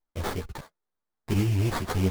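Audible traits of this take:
aliases and images of a low sample rate 2,700 Hz, jitter 20%
a shimmering, thickened sound

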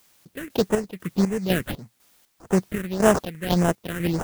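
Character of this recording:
aliases and images of a low sample rate 2,300 Hz, jitter 20%
phaser sweep stages 4, 1.7 Hz, lowest notch 740–4,200 Hz
a quantiser's noise floor 10 bits, dither triangular
chopped level 2 Hz, depth 65%, duty 50%

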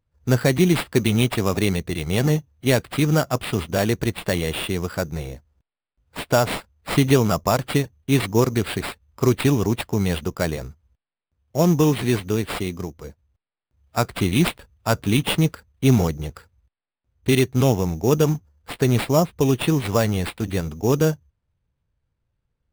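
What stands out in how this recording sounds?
aliases and images of a low sample rate 6,200 Hz, jitter 0%

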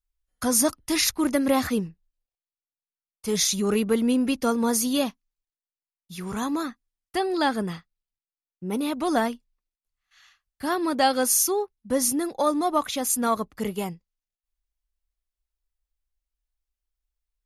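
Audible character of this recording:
background noise floor −96 dBFS
spectral slope −3.5 dB per octave

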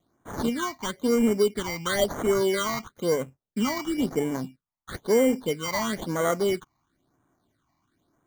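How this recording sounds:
aliases and images of a low sample rate 2,600 Hz, jitter 0%
phaser sweep stages 8, 1 Hz, lowest notch 440–4,500 Hz

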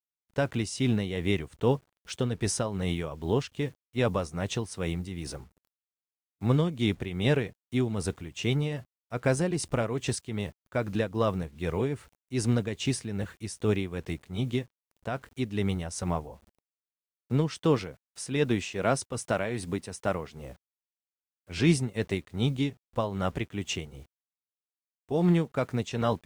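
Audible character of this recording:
a quantiser's noise floor 10 bits, dither none
tremolo triangle 2.5 Hz, depth 65%
Ogg Vorbis

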